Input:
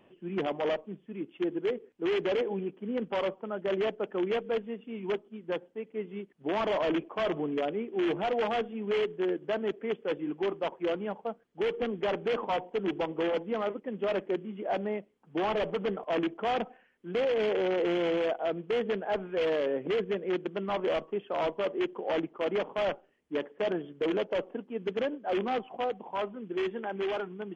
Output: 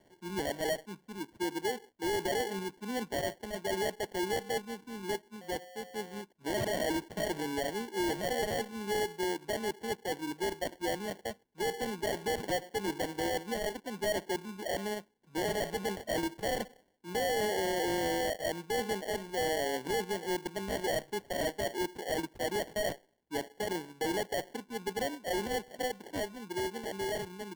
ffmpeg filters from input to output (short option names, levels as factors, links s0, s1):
-filter_complex "[0:a]asettb=1/sr,asplit=3[s0][s1][s2];[s0]atrim=end=5.414[s3];[s1]atrim=start=5.41:end=6.22,asetpts=PTS-STARTPTS,afade=t=in:d=0.004:c=qsin,afade=t=out:st=0.806:d=0.004:c=qsin,aeval=exprs='val(0)+0.00562*sin(2*PI*530*n/s)':c=same[s4];[s2]atrim=start=6.216[s5];[s3][s4]acrossfade=d=0.004:c1=hsin:c2=qsin[s6];[s6][s5]acrossfade=d=0.004:c1=qsin:c2=hsin,acrusher=samples=35:mix=1:aa=0.000001,volume=0.668"